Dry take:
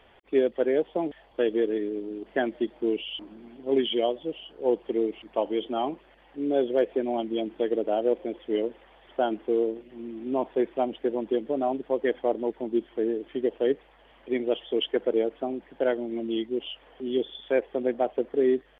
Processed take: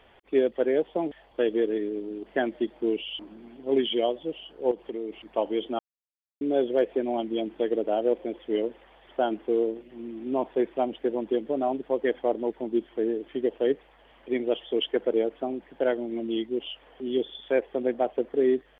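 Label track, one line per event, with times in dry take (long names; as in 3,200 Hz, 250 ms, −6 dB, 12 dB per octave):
4.710000	5.260000	downward compressor, threshold −29 dBFS
5.790000	6.410000	silence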